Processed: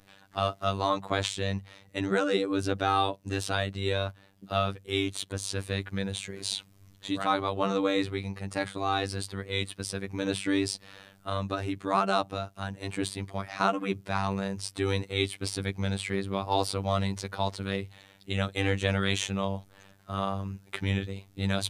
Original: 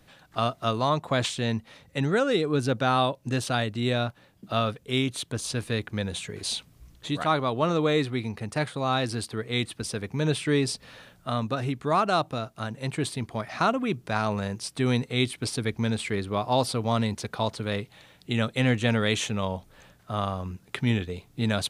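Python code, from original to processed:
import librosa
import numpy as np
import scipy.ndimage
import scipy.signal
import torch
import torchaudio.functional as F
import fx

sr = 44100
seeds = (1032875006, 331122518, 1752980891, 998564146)

y = fx.hum_notches(x, sr, base_hz=50, count=3)
y = fx.robotise(y, sr, hz=97.5)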